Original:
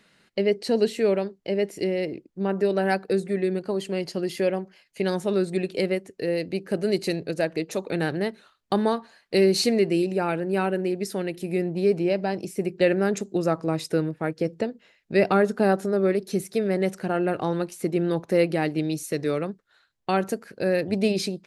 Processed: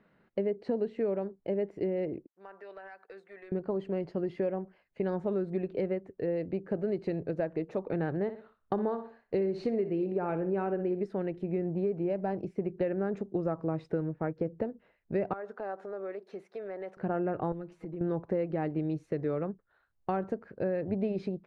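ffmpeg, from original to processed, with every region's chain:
-filter_complex "[0:a]asettb=1/sr,asplit=3[a][b][c];[a]atrim=end=2.274[d];[b]atrim=start=2.27:end=3.52,asetpts=PTS-STARTPTS,afade=t=in:d=0.004:c=qsin,afade=t=out:st=1.246:d=0.004:c=qsin,highpass=1.3k,acompressor=threshold=-36dB:ratio=12:attack=3.2:release=140:knee=1:detection=peak,volume=34dB,asoftclip=hard,volume=-34dB[e];[c]atrim=start=3.516[f];[d][e]acrossfade=d=0.004:c1=hsin:c2=qsin[g];[g][f]acrossfade=d=0.004:c1=qsin:c2=hsin,asettb=1/sr,asplit=3[h][i][j];[h]atrim=end=8.224[k];[i]atrim=start=8.22:end=11.06,asetpts=PTS-STARTPTS,afade=t=in:d=0.004:c=qsin,afade=t=out:st=2.836:d=0.004:c=qsin,equalizer=f=420:w=6.3:g=4.5,aecho=1:1:61|122|183|244:0.224|0.0806|0.029|0.0104,atrim=end_sample=125244[l];[j]atrim=start=11.056[m];[k][l]acrossfade=d=0.004:c1=hsin:c2=qsin[n];[n][m]acrossfade=d=0.004:c1=qsin:c2=hsin,asettb=1/sr,asplit=3[o][p][q];[o]atrim=end=15.334[r];[p]atrim=start=15.33:end=16.97,asetpts=PTS-STARTPTS,afade=t=in:d=0.004:c=qsin,afade=t=out:st=1.636:d=0.004:c=qsin,highpass=610,acompressor=threshold=-33dB:ratio=2.5:attack=3.2:release=140:knee=1:detection=peak[s];[q]atrim=start=16.966[t];[r][s]acrossfade=d=0.004:c1=hsin:c2=qsin[u];[u][t]acrossfade=d=0.004:c1=qsin:c2=hsin,asettb=1/sr,asplit=3[v][w][x];[v]atrim=end=17.524[y];[w]atrim=start=17.52:end=18.01,asetpts=PTS-STARTPTS,afade=t=in:d=0.004:c=qsin,afade=t=out:st=0.486:d=0.004:c=qsin,acompressor=threshold=-37dB:ratio=6:attack=3.2:release=140:knee=1:detection=peak,aecho=1:1:6.2:0.79,atrim=end_sample=21609[z];[x]atrim=start=18.006[aa];[y][z]acrossfade=d=0.004:c1=hsin:c2=qsin[ab];[ab][aa]acrossfade=d=0.004:c1=qsin:c2=hsin,lowpass=1.2k,asubboost=boost=2:cutoff=120,acompressor=threshold=-25dB:ratio=6,volume=-2dB"

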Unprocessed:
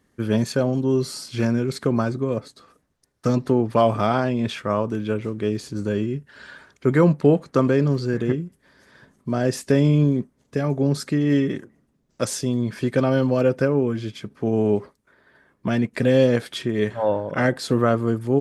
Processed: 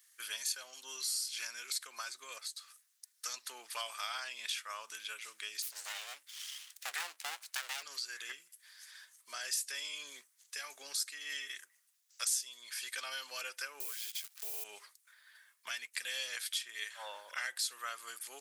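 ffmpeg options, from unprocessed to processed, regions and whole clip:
-filter_complex "[0:a]asettb=1/sr,asplit=3[a][b][c];[a]atrim=end=5.624[d];[b]atrim=start=5.62:end=7.83,asetpts=PTS-STARTPTS,afade=t=in:d=0.004:c=qsin,afade=t=out:st=2.206:d=0.004:c=qsin,equalizer=f=360:t=o:w=0.22:g=6,aeval=exprs='abs(val(0))':c=same[e];[c]atrim=start=7.826[f];[d][e]acrossfade=d=0.004:c1=hsin:c2=qsin[g];[g][f]acrossfade=d=0.004:c1=qsin:c2=hsin,asettb=1/sr,asplit=3[h][i][j];[h]atrim=end=13.804[k];[i]atrim=start=13.8:end=14.64,asetpts=PTS-STARTPTS,afade=t=in:d=0.004:c=qsin,afade=t=out:st=0.836:d=0.004:c=qsin,lowshelf=f=300:t=q:w=3:g=-7,acrusher=bits=8:dc=4:mix=0:aa=0.000001[l];[j]atrim=start=14.636[m];[k][l]acrossfade=d=0.004:c1=hsin:c2=qsin[n];[n][m]acrossfade=d=0.004:c1=qsin:c2=hsin,highpass=1.5k,aderivative,acompressor=threshold=-52dB:ratio=2,volume=10.5dB"

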